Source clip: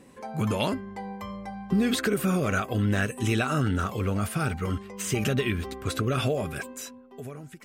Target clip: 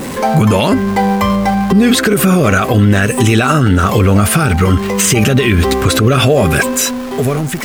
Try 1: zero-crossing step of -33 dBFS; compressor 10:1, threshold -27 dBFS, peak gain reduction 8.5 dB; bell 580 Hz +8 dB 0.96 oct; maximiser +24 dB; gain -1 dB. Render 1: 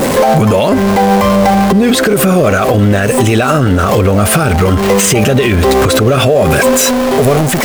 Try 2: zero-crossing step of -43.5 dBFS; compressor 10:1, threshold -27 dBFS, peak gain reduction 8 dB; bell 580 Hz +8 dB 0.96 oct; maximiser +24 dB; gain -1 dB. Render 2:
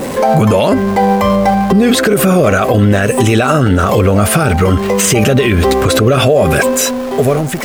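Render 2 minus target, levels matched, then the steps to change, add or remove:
500 Hz band +3.0 dB
remove: bell 580 Hz +8 dB 0.96 oct

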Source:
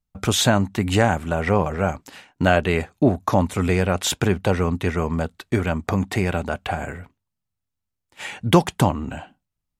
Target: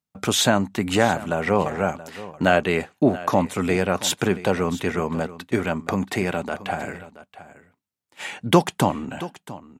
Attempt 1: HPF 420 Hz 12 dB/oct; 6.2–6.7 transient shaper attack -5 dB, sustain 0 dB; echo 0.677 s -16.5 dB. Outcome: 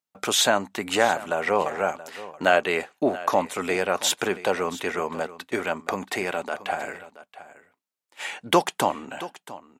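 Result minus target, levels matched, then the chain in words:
125 Hz band -11.5 dB
HPF 160 Hz 12 dB/oct; 6.2–6.7 transient shaper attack -5 dB, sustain 0 dB; echo 0.677 s -16.5 dB

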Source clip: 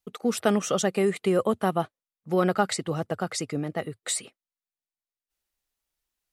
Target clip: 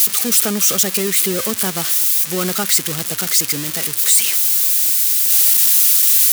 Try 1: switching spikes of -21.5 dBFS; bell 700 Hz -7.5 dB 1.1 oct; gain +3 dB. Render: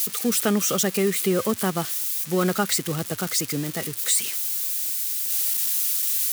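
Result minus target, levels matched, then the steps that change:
switching spikes: distortion -11 dB
change: switching spikes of -10 dBFS

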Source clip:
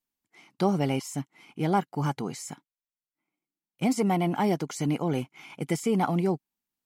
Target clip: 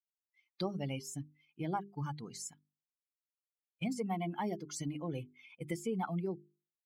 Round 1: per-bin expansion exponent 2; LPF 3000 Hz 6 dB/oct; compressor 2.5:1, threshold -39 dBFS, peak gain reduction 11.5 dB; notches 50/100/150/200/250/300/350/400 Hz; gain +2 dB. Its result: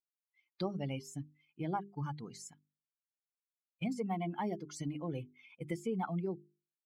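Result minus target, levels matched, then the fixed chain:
8000 Hz band -5.5 dB
per-bin expansion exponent 2; LPF 8800 Hz 6 dB/oct; compressor 2.5:1, threshold -39 dBFS, peak gain reduction 11.5 dB; notches 50/100/150/200/250/300/350/400 Hz; gain +2 dB

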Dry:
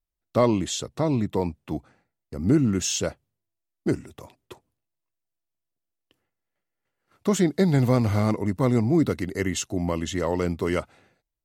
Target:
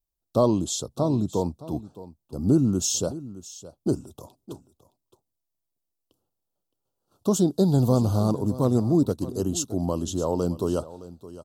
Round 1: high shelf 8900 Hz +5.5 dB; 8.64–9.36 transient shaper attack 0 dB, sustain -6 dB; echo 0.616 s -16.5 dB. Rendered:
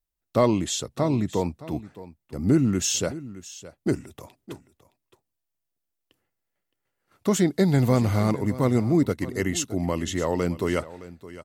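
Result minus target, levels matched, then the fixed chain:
2000 Hz band +19.0 dB
Butterworth band-stop 2000 Hz, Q 0.79; high shelf 8900 Hz +5.5 dB; 8.64–9.36 transient shaper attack 0 dB, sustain -6 dB; echo 0.616 s -16.5 dB

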